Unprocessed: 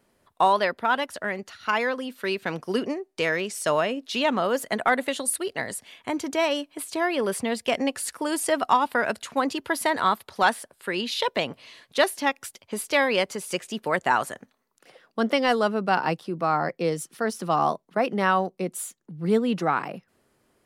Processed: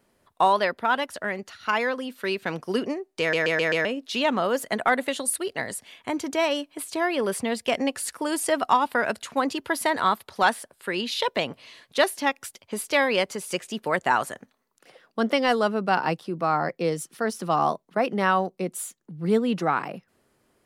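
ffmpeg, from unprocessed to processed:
-filter_complex "[0:a]asplit=6[a][b][c][d][e][f];[a]atrim=end=3.332[g];[b]atrim=start=3.198:end=3.332[h];[c]atrim=start=3.198:end=3.332[i];[d]atrim=start=3.198:end=3.332[j];[e]atrim=start=3.198:end=3.332[k];[f]atrim=start=3.848[l];[g][h]acrossfade=d=0.004:c1=hsin:c2=hsin[m];[m][i]acrossfade=d=0.004:c1=hsin:c2=hsin[n];[n][j]acrossfade=d=0.004:c1=hsin:c2=hsin[o];[o][k]acrossfade=d=0.004:c1=hsin:c2=hsin[p];[p][l]acrossfade=d=0.004:c1=hsin:c2=hsin"

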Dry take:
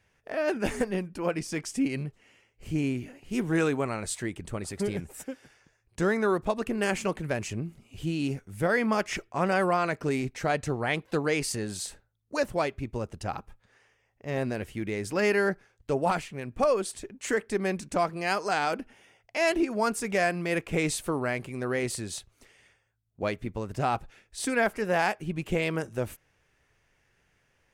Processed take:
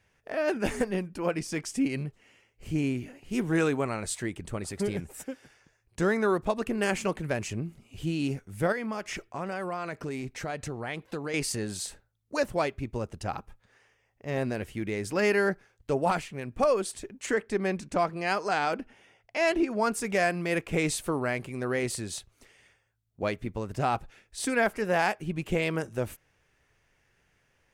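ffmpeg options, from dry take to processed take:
-filter_complex "[0:a]asettb=1/sr,asplit=3[a][b][c];[a]atrim=end=8.724[d];[b]atrim=start=8.72:end=11.34,asetpts=PTS-STARTPTS,afade=t=in:d=0.004:c=qsin,afade=t=out:st=2.616:d=0.004:c=qsin,acompressor=threshold=-33dB:ratio=2.5:attack=3.2:release=140:knee=1:detection=peak[e];[c]atrim=start=11.336[f];[d][e]acrossfade=d=0.004:c1=hsin:c2=qsin[g];[g][f]acrossfade=d=0.004:c1=qsin:c2=hsin,asettb=1/sr,asplit=3[h][i][j];[h]atrim=end=17.264[k];[i]atrim=start=17.26:end=19.92,asetpts=PTS-STARTPTS,afade=t=in:d=0.004:c=qsin,afade=t=out:st=2.656:d=0.004:c=qsin,highshelf=f=7.9k:g=-9.5[l];[j]atrim=start=19.916[m];[k][l]acrossfade=d=0.004:c1=hsin:c2=qsin[n];[n][m]acrossfade=d=0.004:c1=qsin:c2=hsin"

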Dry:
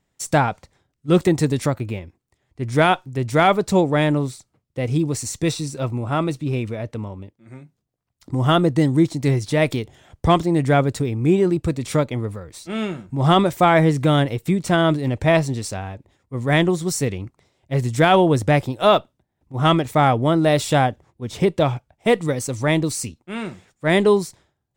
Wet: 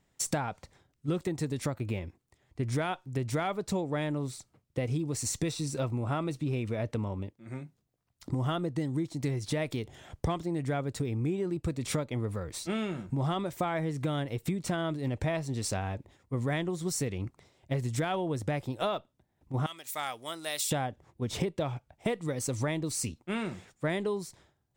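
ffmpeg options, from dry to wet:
-filter_complex "[0:a]asettb=1/sr,asplit=3[a][b][c];[a]atrim=end=19.664[d];[b]atrim=start=19.66:end=20.71,asetpts=PTS-STARTPTS,afade=t=in:d=0.004:c=qsin,afade=t=out:st=1.046:d=0.004:c=qsin,aderivative[e];[c]atrim=start=20.706[f];[d][e]acrossfade=d=0.004:c1=hsin:c2=qsin[g];[g][f]acrossfade=d=0.004:c1=qsin:c2=hsin,acompressor=threshold=-28dB:ratio=12"

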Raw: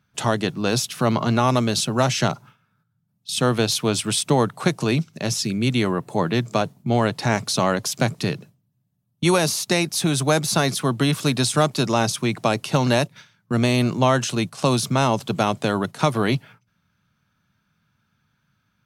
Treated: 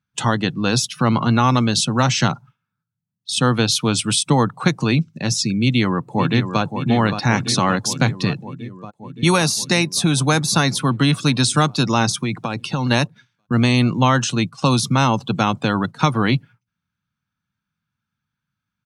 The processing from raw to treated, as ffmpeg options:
-filter_complex "[0:a]asplit=2[a][b];[b]afade=t=in:st=5.6:d=0.01,afade=t=out:st=6.62:d=0.01,aecho=0:1:570|1140|1710|2280|2850|3420|3990|4560|5130|5700|6270|6840:0.398107|0.29858|0.223935|0.167951|0.125964|0.0944727|0.0708545|0.0531409|0.0398557|0.0298918|0.0224188|0.0168141[c];[a][c]amix=inputs=2:normalize=0,asettb=1/sr,asplit=3[d][e][f];[d]atrim=end=12.134[g];[e]atrim=start=12.13:end=12.91,asetpts=PTS-STARTPTS,afade=t=in:d=0.004:c=qsin,afade=t=out:st=0.776:d=0.004:c=qsin,acompressor=threshold=-20dB:ratio=6:attack=3.2:release=140:knee=1:detection=peak[h];[f]atrim=start=12.906[i];[g][h]acrossfade=d=0.004:c1=hsin:c2=qsin[j];[j][i]acrossfade=d=0.004:c1=qsin:c2=hsin,afftdn=nr=17:nf=-36,equalizer=f=400:t=o:w=0.33:g=-8,equalizer=f=630:t=o:w=0.33:g=-10,equalizer=f=12.5k:t=o:w=0.33:g=-8,volume=4.5dB"

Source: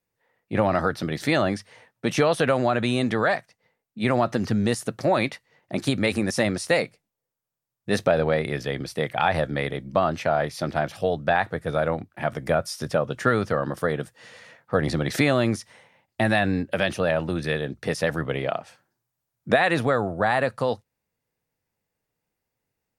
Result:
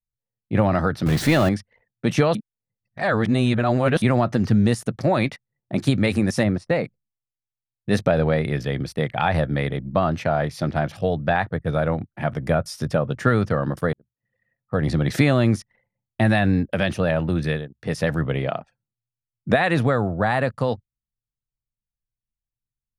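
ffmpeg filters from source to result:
-filter_complex "[0:a]asettb=1/sr,asplit=3[a][b][c];[a]atrim=end=1.064[d];[b]atrim=start=1.06:end=1.49,asetpts=PTS-STARTPTS,afade=t=in:d=0.004:c=qsin,afade=t=out:st=0.426:d=0.004:c=qsin,aeval=exprs='val(0)+0.5*0.0596*sgn(val(0))':c=same[e];[c]atrim=start=1.486[f];[d][e]acrossfade=d=0.004:c1=hsin:c2=qsin[g];[g][f]acrossfade=d=0.004:c1=qsin:c2=hsin,asplit=3[h][i][j];[h]afade=t=out:st=6.43:d=0.02[k];[i]lowpass=f=1.4k:p=1,afade=t=in:st=6.43:d=0.02,afade=t=out:st=6.83:d=0.02[l];[j]afade=t=in:st=6.83:d=0.02[m];[k][l][m]amix=inputs=3:normalize=0,asplit=6[n][o][p][q][r][s];[n]atrim=end=2.352[t];[o]atrim=start=2.348:end=4.022,asetpts=PTS-STARTPTS,areverse[u];[p]atrim=start=4.018:end=13.93,asetpts=PTS-STARTPTS,afade=t=out:st=9.908:d=0.004:c=hsin[v];[q]atrim=start=13.93:end=17.69,asetpts=PTS-STARTPTS,afade=t=in:d=1.19,afade=t=out:st=3.51:d=0.25:c=qsin:silence=0.141254[w];[r]atrim=start=17.69:end=17.77,asetpts=PTS-STARTPTS,volume=-17dB[x];[s]atrim=start=17.77,asetpts=PTS-STARTPTS,afade=t=in:d=0.25:c=qsin:silence=0.141254[y];[t][u]acrossfade=d=0.004:c1=hsin:c2=hsin[z];[v][w][x][y]concat=n=4:v=0:a=1[aa];[z][aa]acrossfade=d=0.004:c1=hsin:c2=hsin,anlmdn=0.0631,bass=f=250:g=8,treble=f=4k:g=-2"

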